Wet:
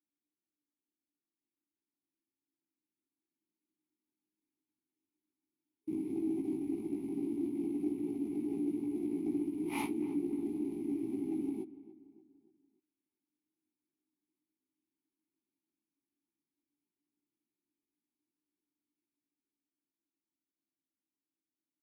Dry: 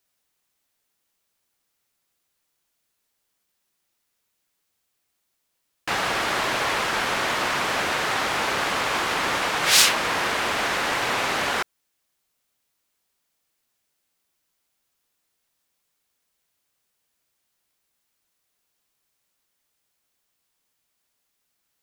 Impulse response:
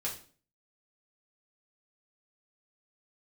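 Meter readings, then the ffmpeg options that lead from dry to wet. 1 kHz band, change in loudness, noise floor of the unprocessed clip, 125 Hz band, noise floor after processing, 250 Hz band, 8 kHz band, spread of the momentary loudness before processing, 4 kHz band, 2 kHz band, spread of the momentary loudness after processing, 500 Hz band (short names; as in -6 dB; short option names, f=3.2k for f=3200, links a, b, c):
-28.0 dB, -14.5 dB, -76 dBFS, -11.5 dB, under -85 dBFS, +3.5 dB, -32.0 dB, 7 LU, under -35 dB, -32.5 dB, 4 LU, -12.0 dB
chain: -filter_complex "[0:a]afftfilt=real='re*(1-between(b*sr/4096,420,9600))':imag='im*(1-between(b*sr/4096,420,9600))':win_size=4096:overlap=0.75,equalizer=f=1k:t=o:w=1:g=-8,equalizer=f=4k:t=o:w=1:g=10,equalizer=f=8k:t=o:w=1:g=8,aeval=exprs='0.316*(cos(1*acos(clip(val(0)/0.316,-1,1)))-cos(1*PI/2))+0.0562*(cos(3*acos(clip(val(0)/0.316,-1,1)))-cos(3*PI/2))+0.0178*(cos(5*acos(clip(val(0)/0.316,-1,1)))-cos(5*PI/2))+0.0398*(cos(6*acos(clip(val(0)/0.316,-1,1)))-cos(6*PI/2))':c=same,acrusher=bits=4:mode=log:mix=0:aa=0.000001,asplit=3[a][b][c];[a]bandpass=f=300:t=q:w=8,volume=0dB[d];[b]bandpass=f=870:t=q:w=8,volume=-6dB[e];[c]bandpass=f=2.24k:t=q:w=8,volume=-9dB[f];[d][e][f]amix=inputs=3:normalize=0,flanger=delay=17:depth=2.3:speed=0.11,dynaudnorm=f=360:g=17:m=6dB,asplit=2[g][h];[h]adelay=289,lowpass=f=2.2k:p=1,volume=-17dB,asplit=2[i][j];[j]adelay=289,lowpass=f=2.2k:p=1,volume=0.47,asplit=2[k][l];[l]adelay=289,lowpass=f=2.2k:p=1,volume=0.47,asplit=2[m][n];[n]adelay=289,lowpass=f=2.2k:p=1,volume=0.47[o];[i][k][m][o]amix=inputs=4:normalize=0[p];[g][p]amix=inputs=2:normalize=0,volume=8.5dB"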